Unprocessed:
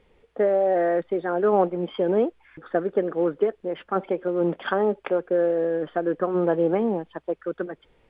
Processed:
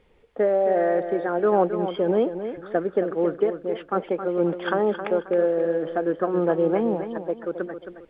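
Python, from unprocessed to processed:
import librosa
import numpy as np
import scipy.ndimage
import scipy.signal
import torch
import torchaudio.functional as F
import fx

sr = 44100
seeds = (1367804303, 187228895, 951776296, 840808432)

y = fx.echo_feedback(x, sr, ms=268, feedback_pct=33, wet_db=-9.5)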